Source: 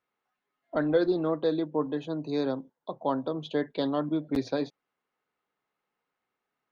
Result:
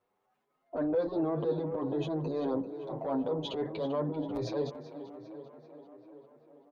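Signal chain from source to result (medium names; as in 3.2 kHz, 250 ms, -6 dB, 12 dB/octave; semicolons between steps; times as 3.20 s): bass shelf 400 Hz +10.5 dB; saturation -13 dBFS, distortion -20 dB; compression, threshold -24 dBFS, peak gain reduction 7 dB; peak limiter -27 dBFS, peak gain reduction 10.5 dB; high-order bell 640 Hz +8.5 dB; transient shaper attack -9 dB, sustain +5 dB; tape echo 390 ms, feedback 74%, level -11 dB, low-pass 3.3 kHz; endless flanger 8 ms +1.2 Hz; trim +1.5 dB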